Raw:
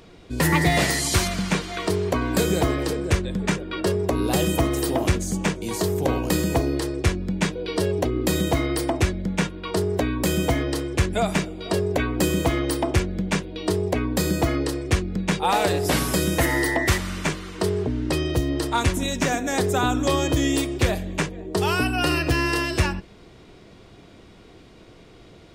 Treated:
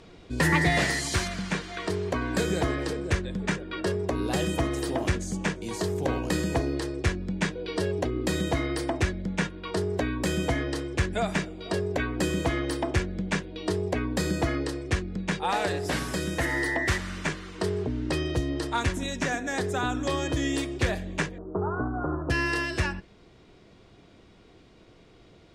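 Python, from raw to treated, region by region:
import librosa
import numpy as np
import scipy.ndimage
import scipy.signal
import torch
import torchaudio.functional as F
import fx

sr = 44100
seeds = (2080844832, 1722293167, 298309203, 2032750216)

y = fx.chain(x, sr, fx.cvsd(bps=16000),
    fx.steep_lowpass(hz=1400.0, slope=72), at=(21.38, 22.3))
y = scipy.signal.sosfilt(scipy.signal.butter(2, 8600.0, 'lowpass', fs=sr, output='sos'), y)
y = fx.dynamic_eq(y, sr, hz=1700.0, q=3.5, threshold_db=-43.0, ratio=4.0, max_db=6)
y = fx.rider(y, sr, range_db=10, speed_s=2.0)
y = y * librosa.db_to_amplitude(-6.0)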